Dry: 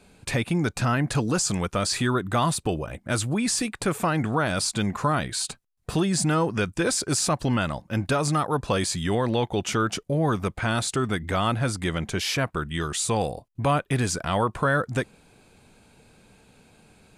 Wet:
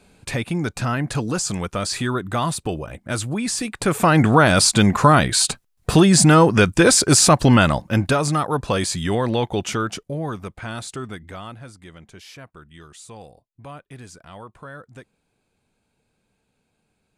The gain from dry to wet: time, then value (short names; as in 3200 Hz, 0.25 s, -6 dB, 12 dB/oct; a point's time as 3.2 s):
3.61 s +0.5 dB
4.19 s +10.5 dB
7.75 s +10.5 dB
8.27 s +3 dB
9.55 s +3 dB
10.44 s -6 dB
11.02 s -6 dB
11.75 s -16 dB